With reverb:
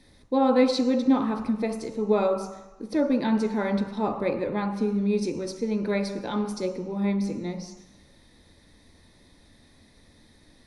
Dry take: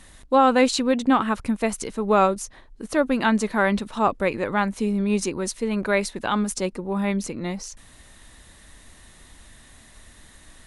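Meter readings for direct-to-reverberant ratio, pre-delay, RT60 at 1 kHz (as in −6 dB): 3.5 dB, 3 ms, 1.2 s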